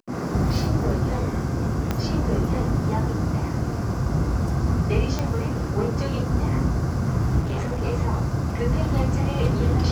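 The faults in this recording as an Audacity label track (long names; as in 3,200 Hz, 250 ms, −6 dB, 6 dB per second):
1.910000	1.910000	click −10 dBFS
5.190000	5.190000	click −13 dBFS
7.400000	7.820000	clipping −22.5 dBFS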